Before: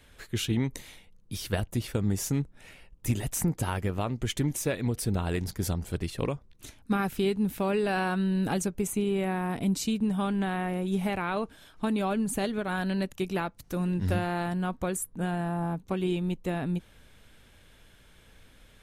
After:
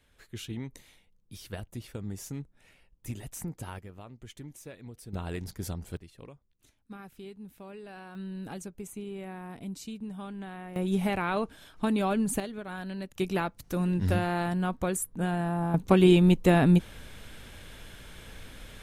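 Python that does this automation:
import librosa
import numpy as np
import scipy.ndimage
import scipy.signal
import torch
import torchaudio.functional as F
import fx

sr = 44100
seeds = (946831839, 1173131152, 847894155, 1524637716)

y = fx.gain(x, sr, db=fx.steps((0.0, -10.0), (3.79, -16.5), (5.13, -6.0), (5.97, -18.0), (8.15, -11.5), (10.76, 1.0), (12.4, -8.0), (13.16, 1.0), (15.74, 10.0)))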